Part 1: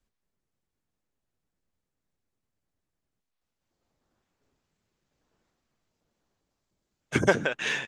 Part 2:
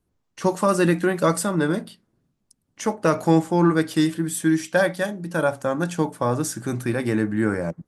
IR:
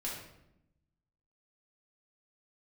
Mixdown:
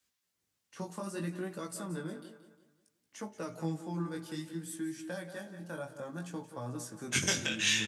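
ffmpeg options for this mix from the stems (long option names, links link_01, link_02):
-filter_complex "[0:a]tiltshelf=frequency=1300:gain=-8.5,volume=3dB,asplit=2[link_01][link_02];[link_02]volume=-9dB[link_03];[1:a]adelay=350,volume=-13dB,asplit=3[link_04][link_05][link_06];[link_05]volume=-20dB[link_07];[link_06]volume=-13.5dB[link_08];[2:a]atrim=start_sample=2205[link_09];[link_03][link_07]amix=inputs=2:normalize=0[link_10];[link_10][link_09]afir=irnorm=-1:irlink=0[link_11];[link_08]aecho=0:1:177|354|531|708|885|1062:1|0.4|0.16|0.064|0.0256|0.0102[link_12];[link_01][link_04][link_11][link_12]amix=inputs=4:normalize=0,highpass=80,acrossover=split=240|3000[link_13][link_14][link_15];[link_14]acompressor=threshold=-38dB:ratio=3[link_16];[link_13][link_16][link_15]amix=inputs=3:normalize=0,flanger=delay=15:depth=7.8:speed=0.61"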